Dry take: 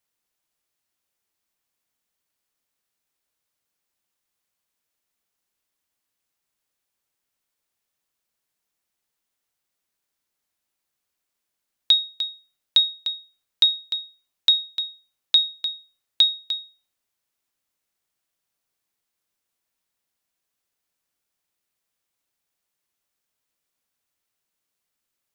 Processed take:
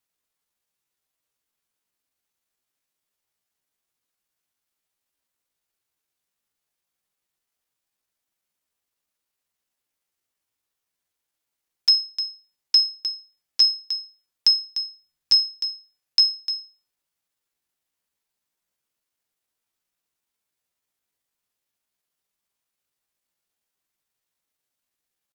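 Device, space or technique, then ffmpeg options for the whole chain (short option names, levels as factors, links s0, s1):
chipmunk voice: -filter_complex "[0:a]asplit=3[s0][s1][s2];[s0]afade=t=out:st=14.86:d=0.02[s3];[s1]asubboost=boost=2.5:cutoff=150,afade=t=in:st=14.86:d=0.02,afade=t=out:st=15.37:d=0.02[s4];[s2]afade=t=in:st=15.37:d=0.02[s5];[s3][s4][s5]amix=inputs=3:normalize=0,asetrate=60591,aresample=44100,atempo=0.727827"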